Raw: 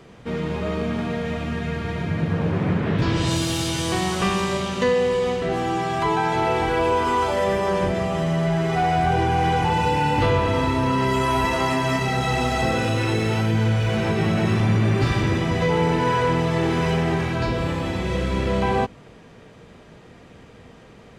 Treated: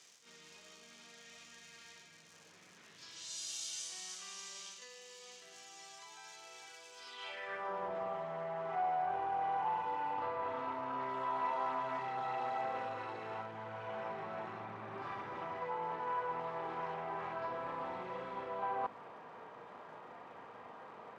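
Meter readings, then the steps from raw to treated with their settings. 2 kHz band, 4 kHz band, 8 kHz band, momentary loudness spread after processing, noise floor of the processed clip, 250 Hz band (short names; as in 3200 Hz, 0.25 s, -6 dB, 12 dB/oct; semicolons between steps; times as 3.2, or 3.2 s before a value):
-20.0 dB, -19.5 dB, -12.0 dB, 18 LU, -60 dBFS, -30.0 dB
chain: HPF 78 Hz; reverse; compressor 5:1, threshold -35 dBFS, peak gain reduction 16.5 dB; reverse; crackle 220/s -44 dBFS; band-pass sweep 6300 Hz -> 970 Hz, 6.94–7.74; reverse echo 38 ms -7.5 dB; Doppler distortion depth 0.15 ms; gain +4.5 dB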